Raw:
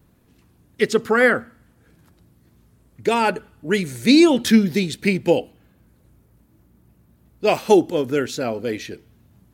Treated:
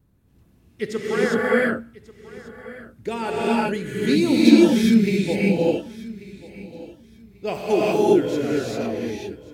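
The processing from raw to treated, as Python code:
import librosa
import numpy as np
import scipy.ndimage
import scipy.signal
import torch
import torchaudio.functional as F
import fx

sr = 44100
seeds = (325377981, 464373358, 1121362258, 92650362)

p1 = fx.low_shelf(x, sr, hz=260.0, db=8.0)
p2 = p1 + fx.echo_feedback(p1, sr, ms=1139, feedback_pct=23, wet_db=-19.0, dry=0)
p3 = fx.rev_gated(p2, sr, seeds[0], gate_ms=430, shape='rising', drr_db=-7.0)
y = p3 * librosa.db_to_amplitude(-11.5)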